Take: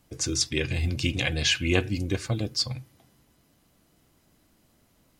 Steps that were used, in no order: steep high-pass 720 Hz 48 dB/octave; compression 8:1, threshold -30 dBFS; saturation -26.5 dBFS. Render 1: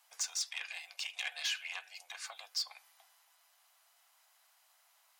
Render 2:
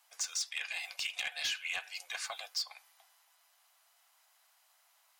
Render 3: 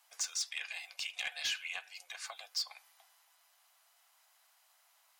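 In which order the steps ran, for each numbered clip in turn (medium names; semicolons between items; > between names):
compression > saturation > steep high-pass; steep high-pass > compression > saturation; compression > steep high-pass > saturation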